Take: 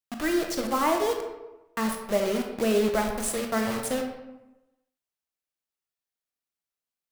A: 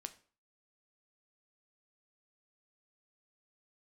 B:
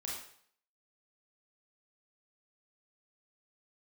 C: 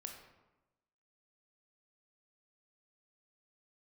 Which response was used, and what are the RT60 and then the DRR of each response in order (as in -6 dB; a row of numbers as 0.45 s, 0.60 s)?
C; 0.45 s, 0.60 s, 1.0 s; 9.0 dB, -4.0 dB, 2.5 dB